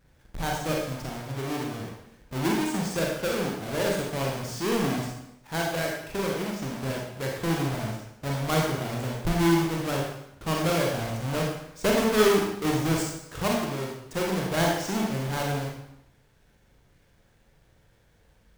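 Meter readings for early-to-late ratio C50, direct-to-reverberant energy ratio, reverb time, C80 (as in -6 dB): 2.0 dB, -2.0 dB, 0.80 s, 5.0 dB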